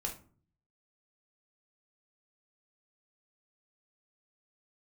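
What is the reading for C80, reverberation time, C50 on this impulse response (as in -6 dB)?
16.5 dB, 0.45 s, 9.5 dB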